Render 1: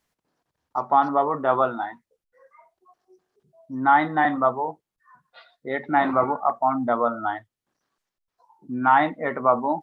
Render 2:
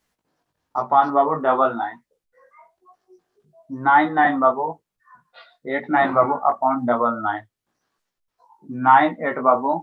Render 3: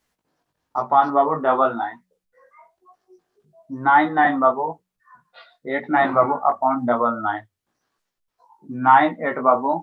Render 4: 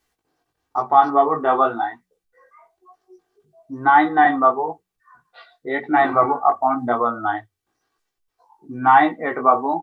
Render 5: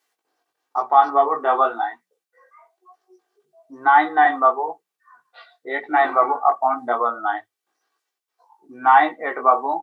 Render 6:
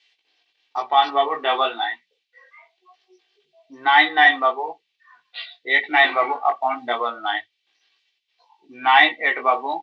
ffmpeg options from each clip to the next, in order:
-af "flanger=delay=16:depth=3.7:speed=1,volume=6dB"
-af "bandreject=f=92.27:t=h:w=4,bandreject=f=184.54:t=h:w=4"
-af "aecho=1:1:2.6:0.51"
-af "highpass=450"
-af "aexciter=amount=8.8:drive=8.4:freq=2.1k,lowpass=f=3.5k:w=0.5412,lowpass=f=3.5k:w=1.3066,volume=-2.5dB"

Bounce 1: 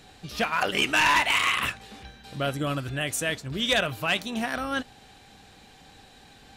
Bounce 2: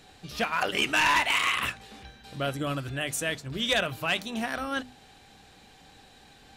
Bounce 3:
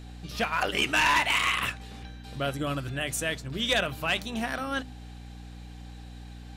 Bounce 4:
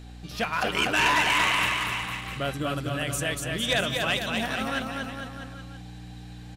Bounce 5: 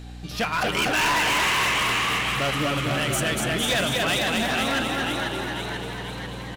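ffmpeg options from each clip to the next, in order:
-af "bandreject=f=50:t=h:w=6,bandreject=f=100:t=h:w=6,bandreject=f=150:t=h:w=6,bandreject=f=200:t=h:w=6,bandreject=f=250:t=h:w=6,volume=-2dB"
-af "aeval=exprs='val(0)+0.00794*(sin(2*PI*60*n/s)+sin(2*PI*2*60*n/s)/2+sin(2*PI*3*60*n/s)/3+sin(2*PI*4*60*n/s)/4+sin(2*PI*5*60*n/s)/5)':c=same"
-af "aecho=1:1:240|456|650.4|825.4|982.8:0.631|0.398|0.251|0.158|0.1"
-filter_complex "[0:a]asplit=9[a][b][c][d][e][f][g][h][i];[b]adelay=491,afreqshift=81,volume=-6.5dB[j];[c]adelay=982,afreqshift=162,volume=-10.9dB[k];[d]adelay=1473,afreqshift=243,volume=-15.4dB[l];[e]adelay=1964,afreqshift=324,volume=-19.8dB[m];[f]adelay=2455,afreqshift=405,volume=-24.2dB[n];[g]adelay=2946,afreqshift=486,volume=-28.7dB[o];[h]adelay=3437,afreqshift=567,volume=-33.1dB[p];[i]adelay=3928,afreqshift=648,volume=-37.6dB[q];[a][j][k][l][m][n][o][p][q]amix=inputs=9:normalize=0,asoftclip=type=hard:threshold=-24dB,volume=4.5dB"

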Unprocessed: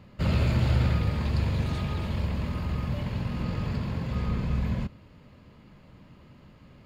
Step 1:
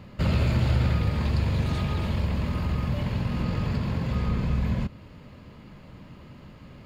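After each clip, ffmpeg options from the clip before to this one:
-af "acompressor=threshold=-34dB:ratio=1.5,volume=6dB"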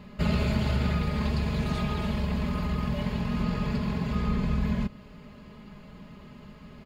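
-af "aecho=1:1:4.8:0.7,volume=-2dB"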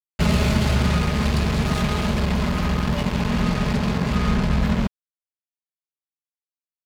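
-af "acrusher=bits=4:mix=0:aa=0.5,volume=6.5dB"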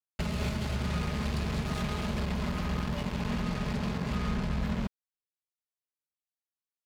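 -af "alimiter=limit=-15dB:level=0:latency=1:release=282,volume=-7dB"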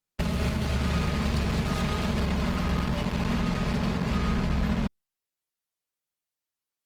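-af "volume=5dB" -ar 48000 -c:a libopus -b:a 24k

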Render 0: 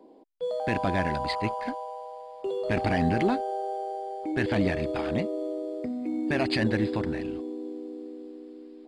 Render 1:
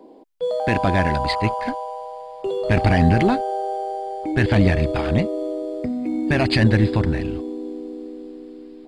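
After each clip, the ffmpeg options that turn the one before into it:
-af "asubboost=boost=3:cutoff=160,volume=7.5dB"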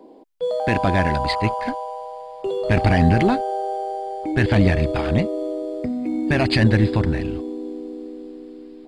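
-af anull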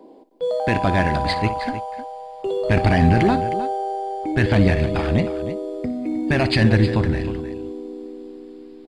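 -af "aecho=1:1:59|311:0.188|0.237"

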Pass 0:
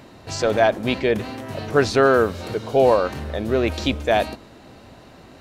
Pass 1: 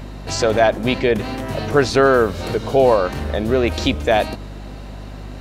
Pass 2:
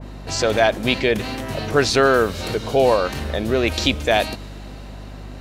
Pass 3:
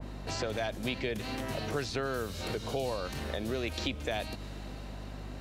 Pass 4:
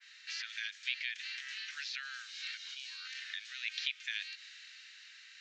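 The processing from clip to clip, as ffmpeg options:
-filter_complex "[0:a]asplit=2[a][b];[b]acompressor=threshold=-25dB:ratio=6,volume=0.5dB[c];[a][c]amix=inputs=2:normalize=0,aeval=exprs='val(0)+0.0251*(sin(2*PI*50*n/s)+sin(2*PI*2*50*n/s)/2+sin(2*PI*3*50*n/s)/3+sin(2*PI*4*50*n/s)/4+sin(2*PI*5*50*n/s)/5)':c=same"
-af "adynamicequalizer=threshold=0.0316:dfrequency=1800:dqfactor=0.7:tfrequency=1800:tqfactor=0.7:attack=5:release=100:ratio=0.375:range=3.5:mode=boostabove:tftype=highshelf,volume=-2.5dB"
-filter_complex "[0:a]acrossover=split=190|3500[a][b][c];[a]acompressor=threshold=-33dB:ratio=4[d];[b]acompressor=threshold=-28dB:ratio=4[e];[c]acompressor=threshold=-39dB:ratio=4[f];[d][e][f]amix=inputs=3:normalize=0,volume=-6dB"
-filter_complex "[0:a]asuperpass=centerf=3500:order=12:qfactor=0.64,acrossover=split=5100[a][b];[b]acompressor=threshold=-60dB:ratio=4:attack=1:release=60[c];[a][c]amix=inputs=2:normalize=0,volume=2dB"

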